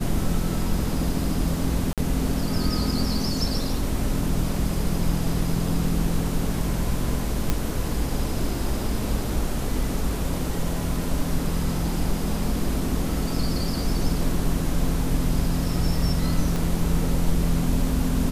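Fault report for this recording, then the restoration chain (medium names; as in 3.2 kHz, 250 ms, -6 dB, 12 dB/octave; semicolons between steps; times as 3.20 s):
1.93–1.98 s: dropout 47 ms
7.50 s: pop -8 dBFS
16.56 s: pop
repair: de-click; interpolate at 1.93 s, 47 ms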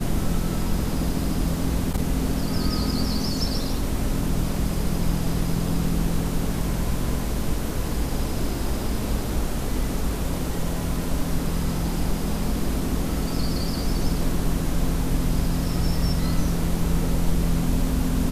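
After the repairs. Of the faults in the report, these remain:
16.56 s: pop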